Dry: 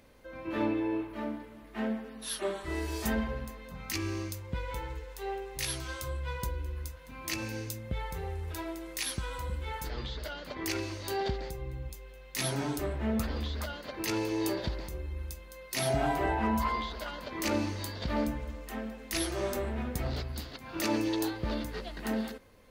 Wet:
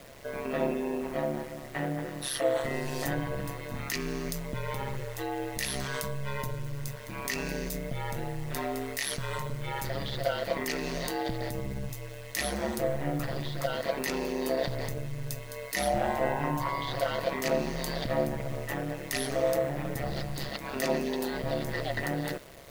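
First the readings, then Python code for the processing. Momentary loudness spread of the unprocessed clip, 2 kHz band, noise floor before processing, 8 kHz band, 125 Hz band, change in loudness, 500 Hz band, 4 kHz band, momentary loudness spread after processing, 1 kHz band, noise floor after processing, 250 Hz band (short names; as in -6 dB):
10 LU, +3.5 dB, -49 dBFS, +1.0 dB, +2.0 dB, +2.0 dB, +5.5 dB, +1.5 dB, 8 LU, +2.5 dB, -42 dBFS, -1.0 dB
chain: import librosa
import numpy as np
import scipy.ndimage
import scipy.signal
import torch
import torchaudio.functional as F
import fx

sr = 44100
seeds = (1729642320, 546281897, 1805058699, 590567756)

p1 = fx.over_compress(x, sr, threshold_db=-40.0, ratio=-1.0)
p2 = x + (p1 * 10.0 ** (1.0 / 20.0))
p3 = fx.small_body(p2, sr, hz=(610.0, 1900.0), ring_ms=85, db=15)
p4 = fx.quant_dither(p3, sr, seeds[0], bits=8, dither='none')
y = p4 * np.sin(2.0 * np.pi * 69.0 * np.arange(len(p4)) / sr)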